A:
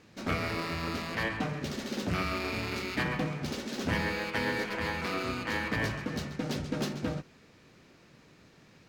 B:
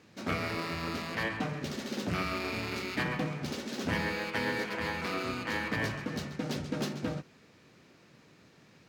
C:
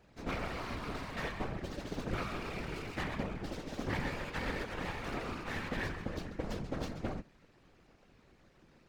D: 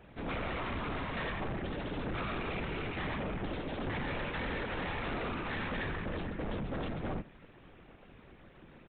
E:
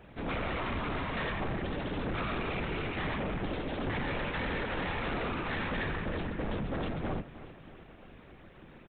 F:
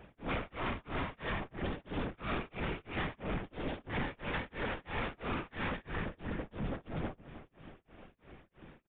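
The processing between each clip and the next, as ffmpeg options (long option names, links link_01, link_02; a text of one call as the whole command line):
ffmpeg -i in.wav -af "highpass=83,volume=-1dB" out.wav
ffmpeg -i in.wav -af "highshelf=frequency=2500:gain=-9,aeval=exprs='max(val(0),0)':channel_layout=same,afftfilt=real='hypot(re,im)*cos(2*PI*random(0))':imag='hypot(re,im)*sin(2*PI*random(1))':win_size=512:overlap=0.75,volume=6.5dB" out.wav
ffmpeg -i in.wav -af "alimiter=level_in=7.5dB:limit=-24dB:level=0:latency=1:release=15,volume=-7.5dB,aresample=8000,asoftclip=type=tanh:threshold=-40dB,aresample=44100,volume=8dB" out.wav
ffmpeg -i in.wav -af "aecho=1:1:315|630|945|1260|1575:0.168|0.0873|0.0454|0.0236|0.0123,volume=2.5dB" out.wav
ffmpeg -i in.wav -af "tremolo=f=3:d=0.99,aresample=8000,aresample=44100" out.wav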